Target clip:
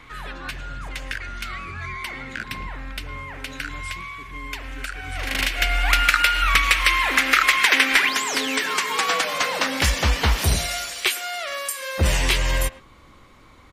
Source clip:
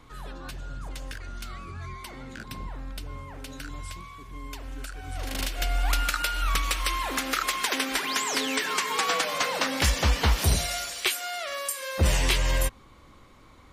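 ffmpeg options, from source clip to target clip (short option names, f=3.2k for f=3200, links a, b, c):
-filter_complex "[0:a]asetnsamples=n=441:p=0,asendcmd='8.09 equalizer g 3',equalizer=f=2.1k:w=1:g=13,asplit=2[a][b];[b]adelay=110,highpass=300,lowpass=3.4k,asoftclip=type=hard:threshold=-12dB,volume=-17dB[c];[a][c]amix=inputs=2:normalize=0,volume=2.5dB"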